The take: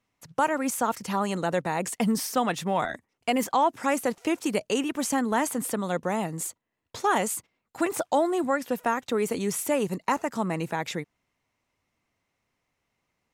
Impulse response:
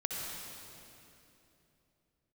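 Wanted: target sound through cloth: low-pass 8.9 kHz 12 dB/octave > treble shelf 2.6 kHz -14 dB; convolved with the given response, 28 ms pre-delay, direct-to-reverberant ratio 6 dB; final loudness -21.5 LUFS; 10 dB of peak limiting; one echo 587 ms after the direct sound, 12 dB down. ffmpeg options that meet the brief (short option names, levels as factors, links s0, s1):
-filter_complex "[0:a]alimiter=limit=0.0794:level=0:latency=1,aecho=1:1:587:0.251,asplit=2[s0][s1];[1:a]atrim=start_sample=2205,adelay=28[s2];[s1][s2]afir=irnorm=-1:irlink=0,volume=0.335[s3];[s0][s3]amix=inputs=2:normalize=0,lowpass=8900,highshelf=f=2600:g=-14,volume=3.55"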